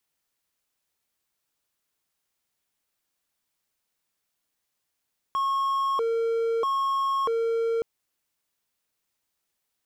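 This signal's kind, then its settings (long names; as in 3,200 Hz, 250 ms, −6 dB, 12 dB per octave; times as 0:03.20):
siren hi-lo 458–1,090 Hz 0.78 per second triangle −20.5 dBFS 2.47 s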